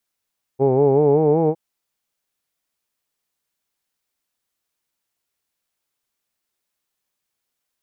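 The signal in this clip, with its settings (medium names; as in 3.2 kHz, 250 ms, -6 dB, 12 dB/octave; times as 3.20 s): formant vowel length 0.96 s, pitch 130 Hz, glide +4 st, F1 430 Hz, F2 830 Hz, F3 2.3 kHz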